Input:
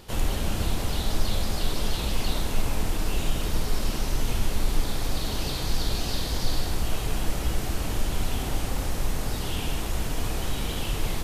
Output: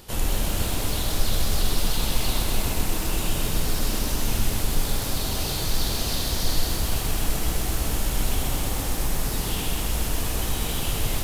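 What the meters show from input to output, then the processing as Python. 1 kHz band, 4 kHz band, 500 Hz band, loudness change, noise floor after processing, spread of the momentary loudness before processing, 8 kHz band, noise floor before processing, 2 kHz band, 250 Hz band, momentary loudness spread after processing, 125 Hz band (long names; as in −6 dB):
+2.0 dB, +4.0 dB, +1.5 dB, +3.5 dB, −28 dBFS, 2 LU, +7.0 dB, −30 dBFS, +2.5 dB, +1.5 dB, 2 LU, +1.5 dB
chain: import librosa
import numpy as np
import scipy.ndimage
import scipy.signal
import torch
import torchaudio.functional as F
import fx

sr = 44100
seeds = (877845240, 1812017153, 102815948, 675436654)

y = fx.high_shelf(x, sr, hz=7200.0, db=9.0)
y = fx.echo_crushed(y, sr, ms=128, feedback_pct=80, bits=7, wet_db=-5.5)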